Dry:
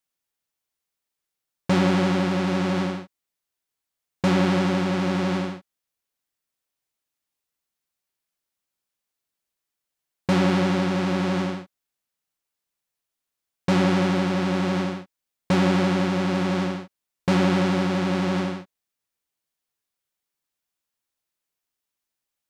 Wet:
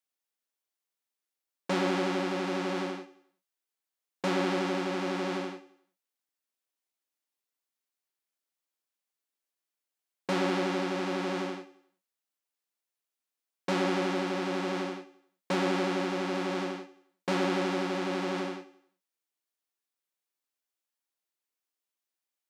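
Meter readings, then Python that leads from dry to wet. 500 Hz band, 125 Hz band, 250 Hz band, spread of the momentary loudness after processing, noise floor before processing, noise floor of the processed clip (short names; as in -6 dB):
-5.0 dB, -15.0 dB, -10.0 dB, 11 LU, -85 dBFS, under -85 dBFS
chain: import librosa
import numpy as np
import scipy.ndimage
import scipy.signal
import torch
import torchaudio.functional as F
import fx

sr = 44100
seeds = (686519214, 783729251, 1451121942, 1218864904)

y = scipy.signal.sosfilt(scipy.signal.butter(4, 230.0, 'highpass', fs=sr, output='sos'), x)
y = fx.echo_feedback(y, sr, ms=89, feedback_pct=44, wet_db=-16.5)
y = y * 10.0 ** (-5.5 / 20.0)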